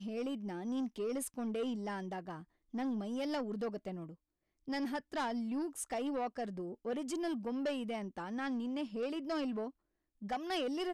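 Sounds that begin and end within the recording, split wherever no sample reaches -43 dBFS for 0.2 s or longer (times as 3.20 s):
2.74–4.11 s
4.68–9.69 s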